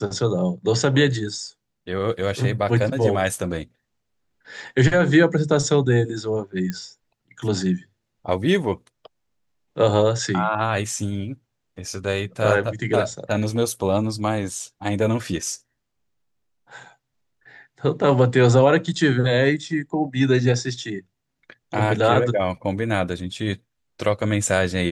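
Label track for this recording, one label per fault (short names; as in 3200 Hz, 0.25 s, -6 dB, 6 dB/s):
6.700000	6.700000	pop -14 dBFS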